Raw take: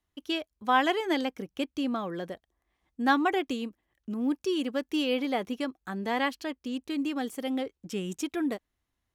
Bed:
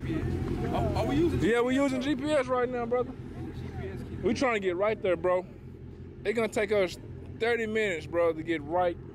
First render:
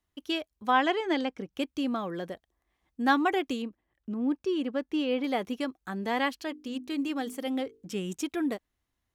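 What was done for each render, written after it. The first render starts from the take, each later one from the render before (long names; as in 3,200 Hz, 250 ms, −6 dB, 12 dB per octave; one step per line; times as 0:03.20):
0:00.71–0:01.53: high-frequency loss of the air 72 metres
0:03.62–0:05.24: low-pass filter 2,000 Hz 6 dB per octave
0:06.40–0:07.95: mains-hum notches 50/100/150/200/250/300/350/400/450 Hz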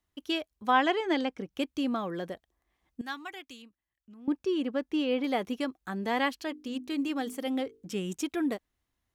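0:03.01–0:04.28: guitar amp tone stack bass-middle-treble 5-5-5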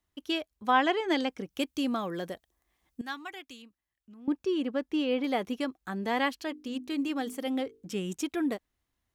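0:01.08–0:03.01: high-shelf EQ 4,700 Hz +8.5 dB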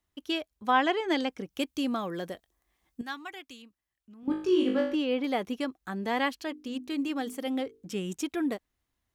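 0:02.32–0:03.03: double-tracking delay 21 ms −13 dB
0:04.21–0:04.95: flutter between parallel walls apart 3.3 metres, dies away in 0.53 s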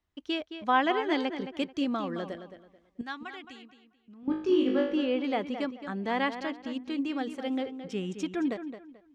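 high-frequency loss of the air 100 metres
feedback echo with a low-pass in the loop 218 ms, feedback 27%, low-pass 4,700 Hz, level −10 dB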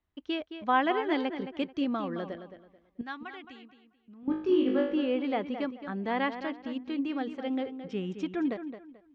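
high-frequency loss of the air 170 metres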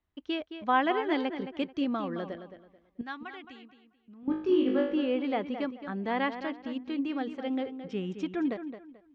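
no processing that can be heard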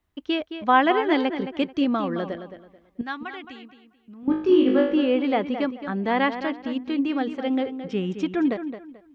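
level +7.5 dB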